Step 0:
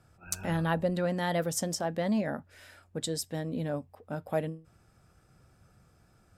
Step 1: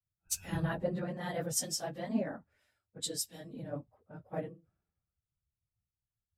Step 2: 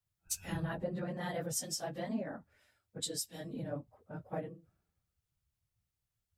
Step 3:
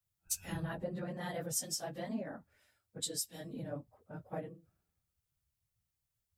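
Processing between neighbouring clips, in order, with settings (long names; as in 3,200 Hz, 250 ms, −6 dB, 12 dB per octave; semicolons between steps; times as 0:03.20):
random phases in long frames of 50 ms; multiband upward and downward expander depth 100%; level −8 dB
downward compressor 2.5 to 1, threshold −42 dBFS, peak gain reduction 11 dB; level +4.5 dB
high-shelf EQ 7,000 Hz +5.5 dB; level −2 dB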